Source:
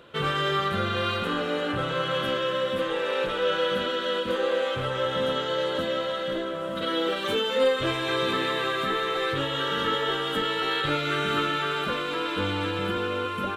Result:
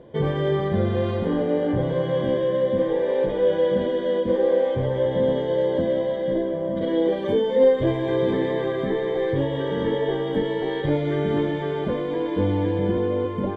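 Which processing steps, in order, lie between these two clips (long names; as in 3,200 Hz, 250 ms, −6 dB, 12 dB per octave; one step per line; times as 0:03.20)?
moving average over 33 samples
level +8.5 dB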